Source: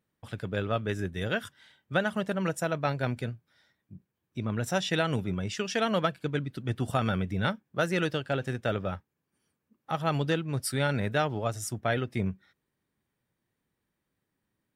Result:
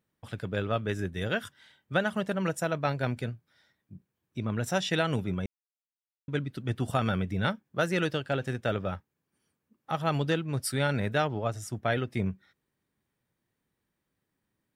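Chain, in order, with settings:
0:05.46–0:06.28: silence
0:11.27–0:11.73: high-shelf EQ 4,600 Hz −8.5 dB

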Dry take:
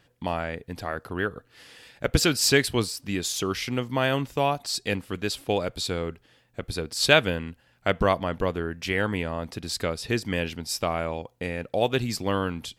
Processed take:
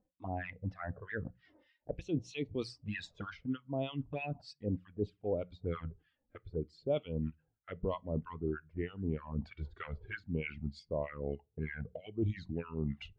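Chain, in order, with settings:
gliding playback speed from 110% → 84%
two-band tremolo in antiphase 3.2 Hz, depth 100%, crossover 1,100 Hz
flanger swept by the level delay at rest 4 ms, full sweep at −26 dBFS
head-to-tape spacing loss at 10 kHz 23 dB
reversed playback
downward compressor 5 to 1, threshold −44 dBFS, peak gain reduction 21 dB
reversed playback
mains-hum notches 60/120/180 Hz
on a send at −18 dB: convolution reverb RT60 0.40 s, pre-delay 3 ms
on the sum: every bin expanded away from the loudest bin 1.5 to 1
level +9.5 dB

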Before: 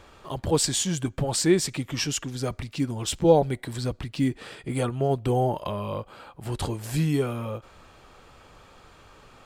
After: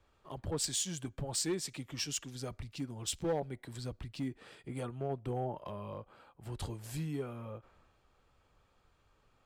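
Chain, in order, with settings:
downward compressor 2 to 1, threshold −35 dBFS, peak gain reduction 12.5 dB
hard clipping −25 dBFS, distortion −21 dB
multiband upward and downward expander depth 70%
level −6.5 dB

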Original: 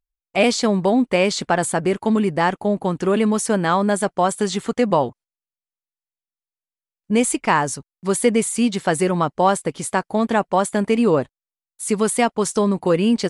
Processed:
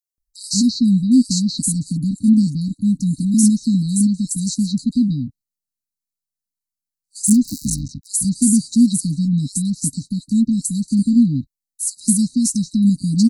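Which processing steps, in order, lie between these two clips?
0:07.27–0:08.07: sub-harmonics by changed cycles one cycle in 3, muted
linear-phase brick-wall band-stop 290–3,800 Hz
multiband delay without the direct sound highs, lows 180 ms, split 4,200 Hz
level +6.5 dB

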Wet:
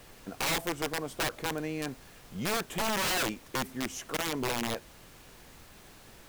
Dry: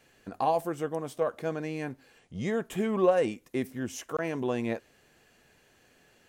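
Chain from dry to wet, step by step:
high-pass filter 130 Hz 12 dB per octave
wrap-around overflow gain 24.5 dB
background noise pink −53 dBFS

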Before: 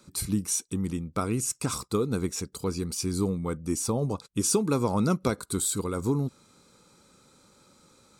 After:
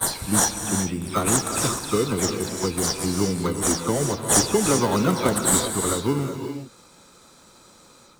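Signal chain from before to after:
every frequency bin delayed by itself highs early, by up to 145 ms
tilt shelving filter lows −5 dB, about 630 Hz
in parallel at −5 dB: sample-rate reduction 2,500 Hz, jitter 0%
on the sum: reverb whose tail is shaped and stops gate 420 ms rising, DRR 5.5 dB
level +3 dB

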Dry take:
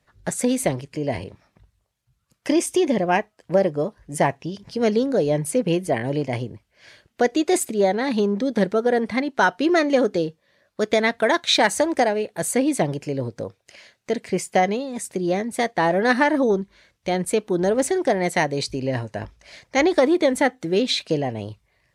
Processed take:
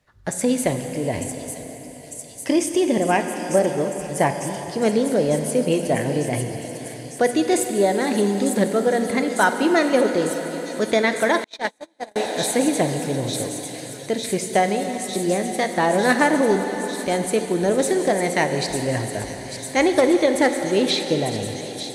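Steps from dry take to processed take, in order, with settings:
on a send: delay with a high-pass on its return 900 ms, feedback 81%, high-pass 5,500 Hz, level −4 dB
on the sum: dense smooth reverb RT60 4.9 s, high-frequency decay 0.9×, DRR 5.5 dB
0:11.44–0:12.16: noise gate −13 dBFS, range −42 dB

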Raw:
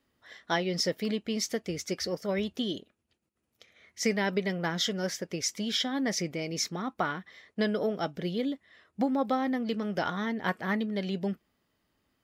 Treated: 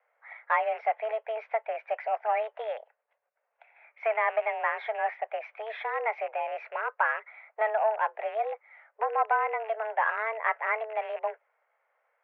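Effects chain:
loose part that buzzes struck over −40 dBFS, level −34 dBFS
harmonic generator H 5 −19 dB, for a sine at −14 dBFS
single-sideband voice off tune +220 Hz 360–2,000 Hz
level +2.5 dB

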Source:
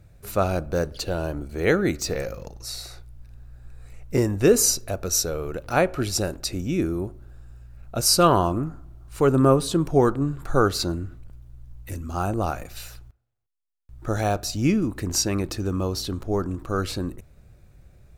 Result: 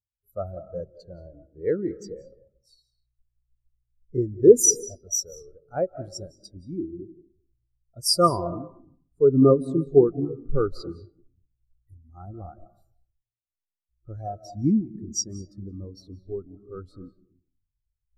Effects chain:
high-shelf EQ 5,200 Hz +10.5 dB
notch filter 2,600 Hz, Q 5.4
reversed playback
upward compression, threshold −39 dBFS
reversed playback
convolution reverb RT60 1.3 s, pre-delay 131 ms, DRR 5.5 dB
every bin expanded away from the loudest bin 2.5 to 1
level −1 dB

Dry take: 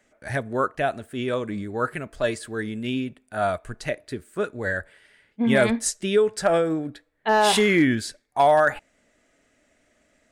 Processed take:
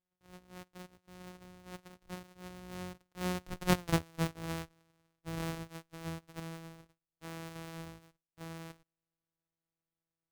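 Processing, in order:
samples sorted by size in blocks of 256 samples
source passing by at 0:03.85, 17 m/s, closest 1.2 metres
level +7 dB

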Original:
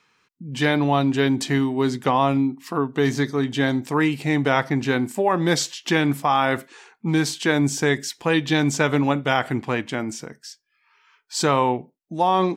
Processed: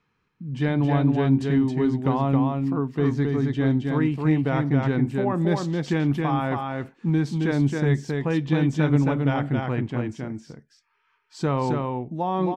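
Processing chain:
RIAA equalisation playback
on a send: single-tap delay 269 ms −3.5 dB
on the sum: level −8.5 dB

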